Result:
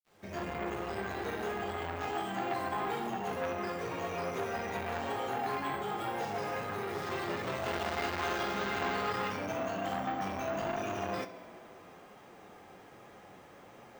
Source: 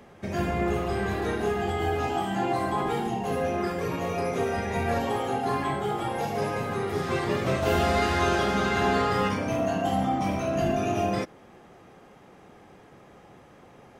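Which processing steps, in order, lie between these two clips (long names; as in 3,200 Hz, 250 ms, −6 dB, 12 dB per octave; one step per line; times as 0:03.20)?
fade in at the beginning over 0.54 s
low-shelf EQ 300 Hz −7.5 dB
in parallel at +1.5 dB: downward compressor, threshold −36 dBFS, peak gain reduction 13.5 dB
on the sum: bit-depth reduction 10 bits, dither none
flanger 1.3 Hz, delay 8.3 ms, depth 3.4 ms, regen +71%
on a send: tape delay 69 ms, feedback 87%, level −16.5 dB, low-pass 5,700 Hz
on the sum: bad sample-rate conversion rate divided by 2×, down filtered, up hold
saturating transformer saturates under 1,500 Hz
level −2.5 dB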